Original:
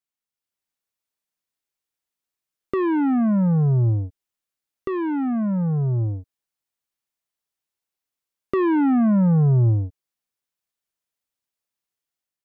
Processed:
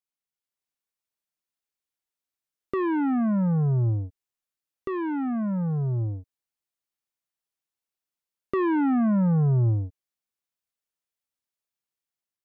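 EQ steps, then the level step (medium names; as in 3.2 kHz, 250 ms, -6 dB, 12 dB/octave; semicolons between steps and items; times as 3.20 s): dynamic bell 1.4 kHz, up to +3 dB, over -36 dBFS, Q 0.92; -4.5 dB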